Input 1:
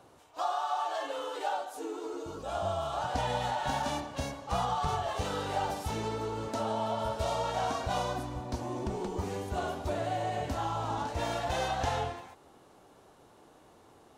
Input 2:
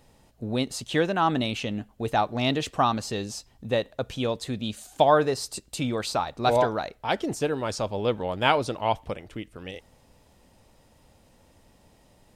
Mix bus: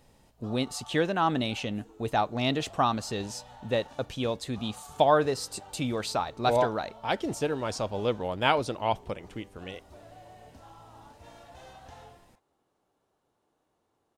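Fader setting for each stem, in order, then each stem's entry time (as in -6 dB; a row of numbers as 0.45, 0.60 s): -18.0, -2.5 dB; 0.05, 0.00 s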